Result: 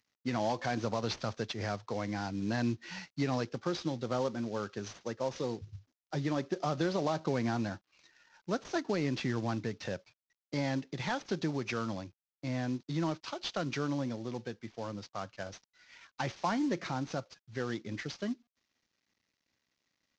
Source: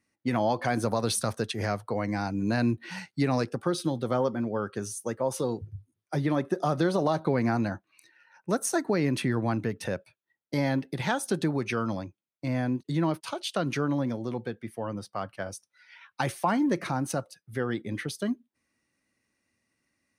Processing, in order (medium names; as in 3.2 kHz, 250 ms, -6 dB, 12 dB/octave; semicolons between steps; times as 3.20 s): CVSD coder 32 kbps; treble shelf 4.7 kHz +8 dB; trim -6 dB